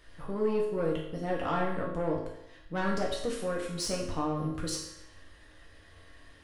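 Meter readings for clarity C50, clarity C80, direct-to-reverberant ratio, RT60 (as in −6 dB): 3.5 dB, 6.5 dB, −3.5 dB, 0.80 s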